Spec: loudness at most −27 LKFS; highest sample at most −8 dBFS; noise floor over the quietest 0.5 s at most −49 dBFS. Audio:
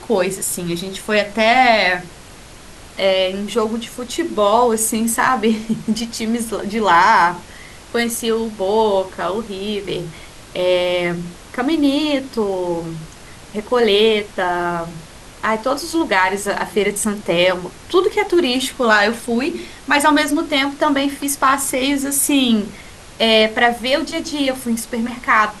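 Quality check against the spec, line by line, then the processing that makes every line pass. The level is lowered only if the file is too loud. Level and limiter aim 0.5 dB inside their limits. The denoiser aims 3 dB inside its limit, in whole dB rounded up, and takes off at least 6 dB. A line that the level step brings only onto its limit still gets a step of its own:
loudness −17.5 LKFS: out of spec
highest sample −2.0 dBFS: out of spec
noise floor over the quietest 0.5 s −39 dBFS: out of spec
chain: broadband denoise 6 dB, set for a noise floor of −39 dBFS
level −10 dB

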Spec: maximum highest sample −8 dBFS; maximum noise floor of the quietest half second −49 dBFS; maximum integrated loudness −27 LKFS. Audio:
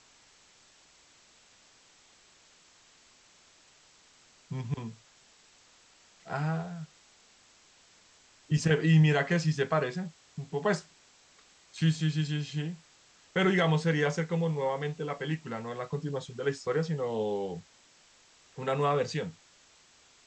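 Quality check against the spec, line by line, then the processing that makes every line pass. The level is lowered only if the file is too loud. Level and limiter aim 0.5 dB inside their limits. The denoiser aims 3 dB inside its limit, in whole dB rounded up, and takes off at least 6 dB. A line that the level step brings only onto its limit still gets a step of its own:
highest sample −12.5 dBFS: in spec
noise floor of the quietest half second −61 dBFS: in spec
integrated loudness −30.5 LKFS: in spec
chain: no processing needed

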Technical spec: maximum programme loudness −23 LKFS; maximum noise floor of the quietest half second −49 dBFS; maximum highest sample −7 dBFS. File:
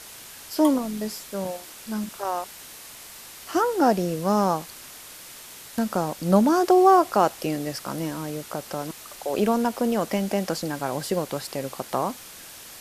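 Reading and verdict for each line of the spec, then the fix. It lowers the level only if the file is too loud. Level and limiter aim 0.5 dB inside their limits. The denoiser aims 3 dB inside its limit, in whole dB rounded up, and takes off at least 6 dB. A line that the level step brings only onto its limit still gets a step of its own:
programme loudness −24.5 LKFS: in spec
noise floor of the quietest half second −43 dBFS: out of spec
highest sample −5.0 dBFS: out of spec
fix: broadband denoise 9 dB, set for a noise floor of −43 dBFS
brickwall limiter −7.5 dBFS

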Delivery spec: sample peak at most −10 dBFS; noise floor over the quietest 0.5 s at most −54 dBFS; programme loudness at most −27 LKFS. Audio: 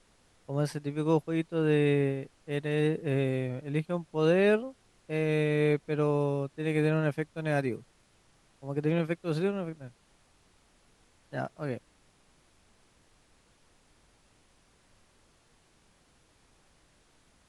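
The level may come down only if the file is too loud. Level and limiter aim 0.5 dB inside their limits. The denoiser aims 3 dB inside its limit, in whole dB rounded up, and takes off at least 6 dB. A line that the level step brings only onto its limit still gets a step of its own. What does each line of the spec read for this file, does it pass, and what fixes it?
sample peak −13.0 dBFS: in spec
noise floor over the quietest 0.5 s −65 dBFS: in spec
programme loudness −30.0 LKFS: in spec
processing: no processing needed

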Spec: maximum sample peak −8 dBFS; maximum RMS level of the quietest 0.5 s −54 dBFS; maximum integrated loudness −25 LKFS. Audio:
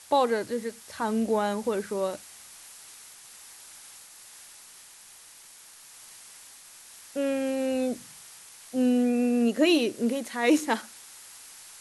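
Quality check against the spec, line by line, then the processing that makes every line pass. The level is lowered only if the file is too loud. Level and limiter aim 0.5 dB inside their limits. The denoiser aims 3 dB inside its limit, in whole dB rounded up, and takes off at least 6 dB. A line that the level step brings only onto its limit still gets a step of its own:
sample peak −11.0 dBFS: in spec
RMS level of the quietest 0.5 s −51 dBFS: out of spec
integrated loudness −27.0 LKFS: in spec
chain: broadband denoise 6 dB, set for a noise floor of −51 dBFS

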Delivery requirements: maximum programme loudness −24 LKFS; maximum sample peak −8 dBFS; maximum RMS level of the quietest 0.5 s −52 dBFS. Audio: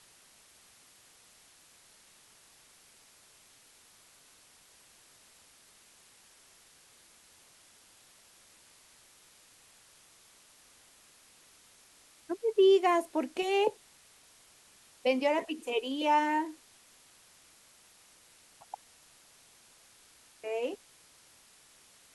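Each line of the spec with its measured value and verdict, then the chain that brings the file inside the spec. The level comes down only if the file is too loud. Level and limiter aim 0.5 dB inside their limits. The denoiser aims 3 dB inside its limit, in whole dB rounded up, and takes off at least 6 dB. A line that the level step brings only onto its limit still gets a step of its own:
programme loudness −29.5 LKFS: in spec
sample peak −15.5 dBFS: in spec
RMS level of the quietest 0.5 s −60 dBFS: in spec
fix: no processing needed

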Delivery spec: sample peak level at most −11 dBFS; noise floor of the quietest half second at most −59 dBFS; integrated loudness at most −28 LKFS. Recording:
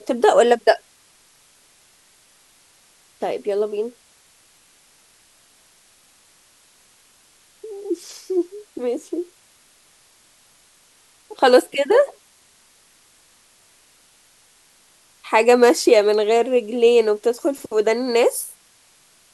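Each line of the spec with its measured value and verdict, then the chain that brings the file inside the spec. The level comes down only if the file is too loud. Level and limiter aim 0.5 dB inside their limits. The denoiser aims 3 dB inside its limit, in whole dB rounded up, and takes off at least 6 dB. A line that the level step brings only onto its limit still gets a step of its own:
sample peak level −2.0 dBFS: out of spec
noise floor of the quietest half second −55 dBFS: out of spec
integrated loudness −18.5 LKFS: out of spec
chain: level −10 dB

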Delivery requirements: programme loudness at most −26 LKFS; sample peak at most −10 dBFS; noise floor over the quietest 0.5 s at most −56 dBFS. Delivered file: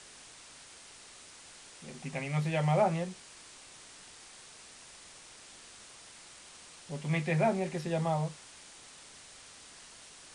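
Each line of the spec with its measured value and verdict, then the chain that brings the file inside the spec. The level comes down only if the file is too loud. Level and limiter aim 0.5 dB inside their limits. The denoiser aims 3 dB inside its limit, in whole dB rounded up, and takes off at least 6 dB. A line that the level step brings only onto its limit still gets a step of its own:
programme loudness −32.0 LKFS: in spec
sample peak −15.5 dBFS: in spec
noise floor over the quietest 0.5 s −53 dBFS: out of spec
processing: broadband denoise 6 dB, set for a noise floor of −53 dBFS

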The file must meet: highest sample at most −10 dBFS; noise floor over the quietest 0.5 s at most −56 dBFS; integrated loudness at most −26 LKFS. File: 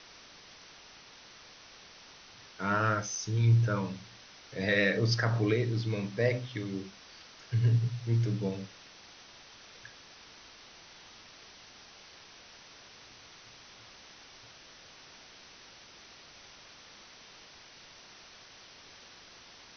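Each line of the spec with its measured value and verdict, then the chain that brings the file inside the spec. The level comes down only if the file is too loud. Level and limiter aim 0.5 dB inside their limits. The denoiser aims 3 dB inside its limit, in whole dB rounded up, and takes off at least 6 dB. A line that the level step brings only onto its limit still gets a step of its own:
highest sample −14.5 dBFS: in spec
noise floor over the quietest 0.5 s −54 dBFS: out of spec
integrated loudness −30.0 LKFS: in spec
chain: broadband denoise 6 dB, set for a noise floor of −54 dBFS

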